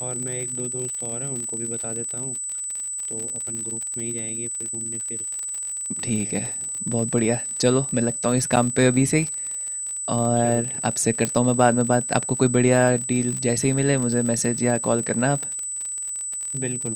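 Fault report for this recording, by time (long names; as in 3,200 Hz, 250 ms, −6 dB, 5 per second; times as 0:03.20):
surface crackle 49 per second −27 dBFS
whistle 8,000 Hz −27 dBFS
0:03.55: click −22 dBFS
0:08.56–0:08.57: drop-out 7.1 ms
0:11.25: click −8 dBFS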